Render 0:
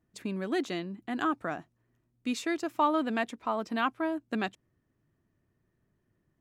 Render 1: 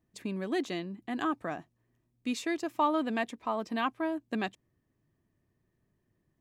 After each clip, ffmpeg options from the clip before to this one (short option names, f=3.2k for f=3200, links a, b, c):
-af "bandreject=f=1.4k:w=7,volume=-1dB"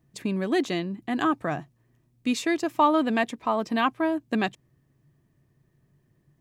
-af "equalizer=f=140:w=5.9:g=12.5,volume=7dB"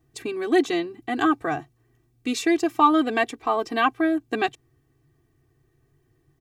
-af "aecho=1:1:2.6:0.96"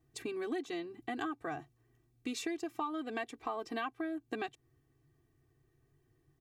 -af "acompressor=threshold=-28dB:ratio=6,volume=-7dB"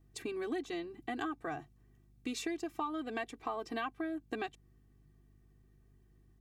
-af "aeval=exprs='val(0)+0.000631*(sin(2*PI*50*n/s)+sin(2*PI*2*50*n/s)/2+sin(2*PI*3*50*n/s)/3+sin(2*PI*4*50*n/s)/4+sin(2*PI*5*50*n/s)/5)':c=same"